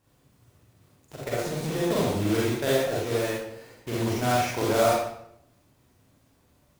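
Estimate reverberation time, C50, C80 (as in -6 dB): 0.70 s, -2.0 dB, 3.0 dB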